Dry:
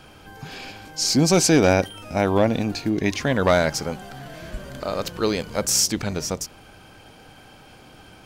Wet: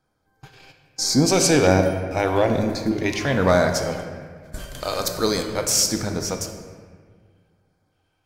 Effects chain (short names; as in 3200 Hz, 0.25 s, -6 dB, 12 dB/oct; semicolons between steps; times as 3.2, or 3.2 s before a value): 4.52–5.43 bell 11000 Hz +11.5 dB 2.6 oct; gate -34 dBFS, range -25 dB; LFO notch square 1.2 Hz 210–2800 Hz; on a send: reverb RT60 1.8 s, pre-delay 4 ms, DRR 4.5 dB